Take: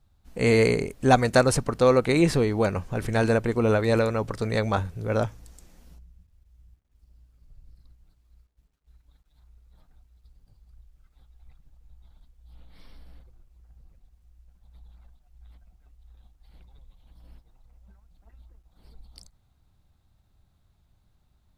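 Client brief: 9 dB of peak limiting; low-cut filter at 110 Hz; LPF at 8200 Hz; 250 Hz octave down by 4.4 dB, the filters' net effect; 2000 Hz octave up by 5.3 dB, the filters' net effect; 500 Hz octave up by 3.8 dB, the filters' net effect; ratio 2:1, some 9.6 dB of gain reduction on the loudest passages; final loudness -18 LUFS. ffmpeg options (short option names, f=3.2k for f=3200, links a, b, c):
-af "highpass=110,lowpass=8.2k,equalizer=f=250:t=o:g=-8,equalizer=f=500:t=o:g=6,equalizer=f=2k:t=o:g=6.5,acompressor=threshold=-28dB:ratio=2,volume=13dB,alimiter=limit=-6dB:level=0:latency=1"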